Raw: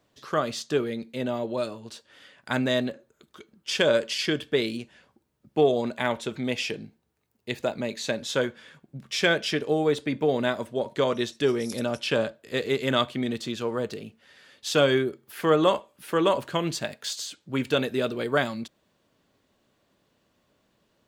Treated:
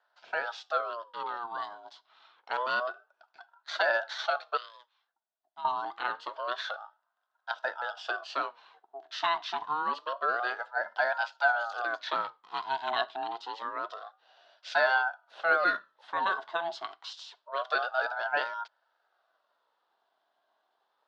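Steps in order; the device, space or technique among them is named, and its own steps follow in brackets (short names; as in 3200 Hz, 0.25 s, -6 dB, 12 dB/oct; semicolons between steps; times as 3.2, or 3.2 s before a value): voice changer toy (ring modulator with a swept carrier 840 Hz, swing 40%, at 0.27 Hz; speaker cabinet 580–4700 Hz, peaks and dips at 660 Hz +9 dB, 940 Hz +4 dB, 1500 Hz +8 dB, 2300 Hz -10 dB, 3500 Hz +4 dB); 4.57–5.65 passive tone stack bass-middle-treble 5-5-5; gain -5.5 dB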